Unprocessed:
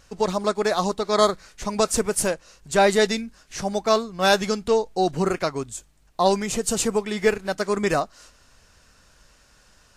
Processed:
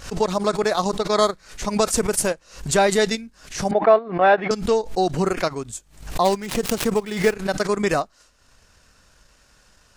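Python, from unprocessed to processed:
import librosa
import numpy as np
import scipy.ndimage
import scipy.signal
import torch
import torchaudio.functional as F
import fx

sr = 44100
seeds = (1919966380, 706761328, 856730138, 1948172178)

p1 = fx.dead_time(x, sr, dead_ms=0.094, at=(6.24, 7.33), fade=0.02)
p2 = fx.level_steps(p1, sr, step_db=12)
p3 = p1 + F.gain(torch.from_numpy(p2), -2.5).numpy()
p4 = fx.cabinet(p3, sr, low_hz=270.0, low_slope=12, high_hz=2500.0, hz=(300.0, 480.0, 710.0, 1800.0), db=(7, 3, 9, 4), at=(3.71, 4.51))
p5 = fx.transient(p4, sr, attack_db=2, sustain_db=-6)
p6 = fx.pre_swell(p5, sr, db_per_s=120.0)
y = F.gain(torch.from_numpy(p6), -3.0).numpy()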